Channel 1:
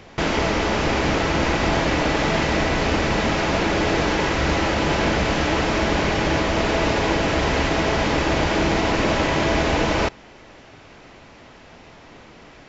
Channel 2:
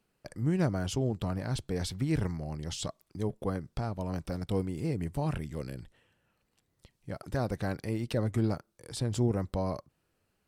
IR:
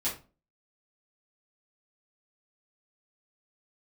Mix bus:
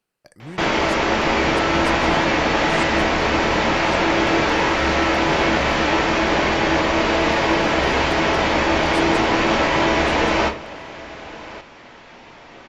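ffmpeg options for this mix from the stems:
-filter_complex "[0:a]highshelf=f=5.7k:g=-10,adelay=400,volume=1dB,asplit=3[a][b][c];[b]volume=-5dB[d];[c]volume=-13.5dB[e];[1:a]volume=-1.5dB,asplit=3[f][g][h];[g]volume=-20.5dB[i];[h]volume=-8dB[j];[2:a]atrim=start_sample=2205[k];[d][i]amix=inputs=2:normalize=0[l];[l][k]afir=irnorm=-1:irlink=0[m];[e][j]amix=inputs=2:normalize=0,aecho=0:1:1124:1[n];[a][f][m][n]amix=inputs=4:normalize=0,lowshelf=f=320:g=-10.5"

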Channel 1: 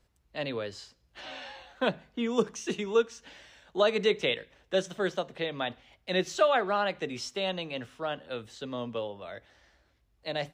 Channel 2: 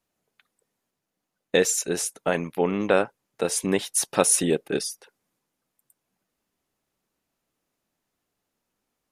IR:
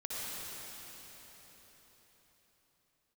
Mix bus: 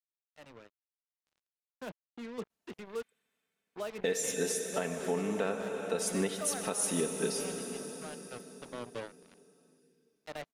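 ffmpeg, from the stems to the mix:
-filter_complex "[0:a]lowpass=f=3k:w=0.5412,lowpass=f=3k:w=1.3066,equalizer=f=220:t=o:w=1.5:g=2.5,acrusher=bits=4:mix=0:aa=0.5,volume=-14dB,afade=t=in:st=8.1:d=0.4:silence=0.446684[a];[1:a]highpass=56,aecho=1:1:4.5:0.48,adelay=2500,volume=-15.5dB,asplit=2[b][c];[c]volume=-6.5dB[d];[2:a]atrim=start_sample=2205[e];[d][e]afir=irnorm=-1:irlink=0[f];[a][b][f]amix=inputs=3:normalize=0,dynaudnorm=f=240:g=13:m=6dB,alimiter=limit=-19.5dB:level=0:latency=1:release=404"

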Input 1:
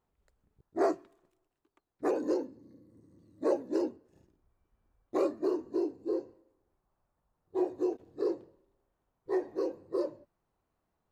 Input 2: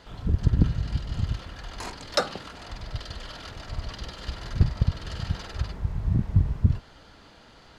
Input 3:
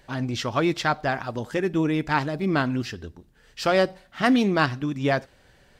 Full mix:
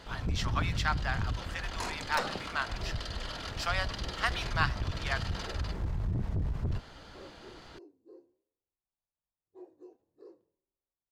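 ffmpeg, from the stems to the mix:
-filter_complex "[0:a]flanger=delay=9.4:depth=5.4:regen=83:speed=1.2:shape=triangular,adelay=2000,volume=-17.5dB[a];[1:a]aeval=exprs='(tanh(12.6*val(0)+0.45)-tanh(0.45))/12.6':c=same,alimiter=level_in=3.5dB:limit=-24dB:level=0:latency=1:release=28,volume=-3.5dB,volume=2.5dB[b];[2:a]highpass=f=880:w=0.5412,highpass=f=880:w=1.3066,volume=-5.5dB[c];[a][b][c]amix=inputs=3:normalize=0"

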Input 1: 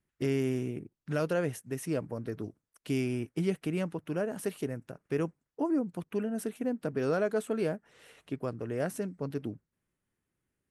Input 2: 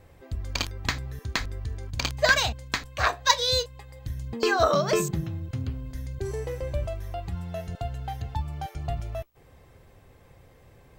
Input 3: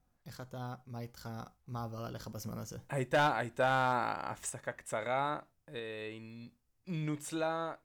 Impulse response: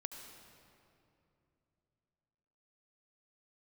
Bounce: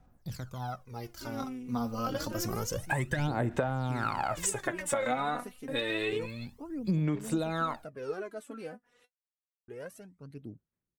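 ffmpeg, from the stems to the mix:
-filter_complex "[0:a]adelay=1000,volume=-19.5dB,asplit=3[a][b][c];[a]atrim=end=9.05,asetpts=PTS-STARTPTS,afade=t=out:st=9.046:d=0.004:c=hsin[d];[b]atrim=start=9.05:end=9.68,asetpts=PTS-STARTPTS,volume=0[e];[c]atrim=start=9.68,asetpts=PTS-STARTPTS,afade=t=in:d=0.004:c=hsin[f];[d][e][f]concat=n=3:v=0:a=1[g];[2:a]acrossover=split=300[h][i];[i]acompressor=threshold=-33dB:ratio=6[j];[h][j]amix=inputs=2:normalize=0,alimiter=level_in=2dB:limit=-24dB:level=0:latency=1:release=415,volume=-2dB,volume=2dB[k];[g][k]amix=inputs=2:normalize=0,dynaudnorm=f=350:g=11:m=8dB,aphaser=in_gain=1:out_gain=1:delay=4.1:decay=0.73:speed=0.28:type=sinusoidal,acompressor=threshold=-26dB:ratio=12"

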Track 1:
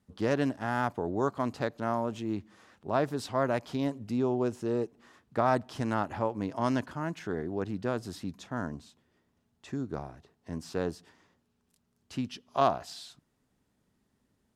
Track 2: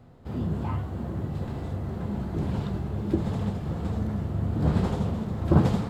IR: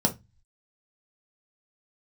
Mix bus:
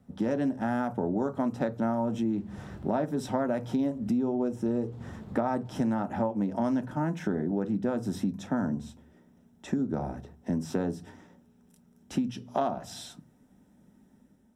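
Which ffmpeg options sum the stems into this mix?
-filter_complex "[0:a]equalizer=f=4.1k:t=o:w=1.7:g=-4.5,dynaudnorm=f=120:g=7:m=5dB,volume=-0.5dB,asplit=3[a][b][c];[b]volume=-11dB[d];[1:a]volume=-13dB[e];[c]apad=whole_len=260081[f];[e][f]sidechaincompress=threshold=-31dB:ratio=4:attack=16:release=467[g];[2:a]atrim=start_sample=2205[h];[d][h]afir=irnorm=-1:irlink=0[i];[a][g][i]amix=inputs=3:normalize=0,acompressor=threshold=-26dB:ratio=6"

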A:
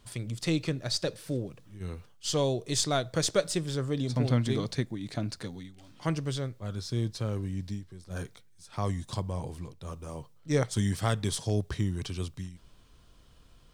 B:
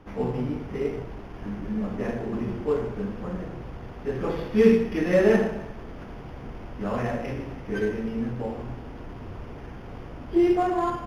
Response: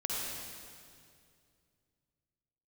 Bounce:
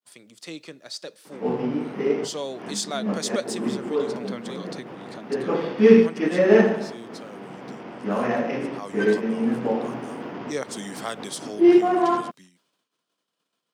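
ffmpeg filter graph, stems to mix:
-filter_complex "[0:a]agate=range=-33dB:threshold=-49dB:ratio=3:detection=peak,highpass=f=380:p=1,volume=-5dB,asplit=2[a][b];[1:a]lowpass=5.4k,adelay=1250,volume=2.5dB[c];[b]apad=whole_len=543035[d];[c][d]sidechaincompress=threshold=-43dB:ratio=8:attack=23:release=119[e];[a][e]amix=inputs=2:normalize=0,highpass=f=180:w=0.5412,highpass=f=180:w=1.3066,dynaudnorm=f=550:g=9:m=8dB"

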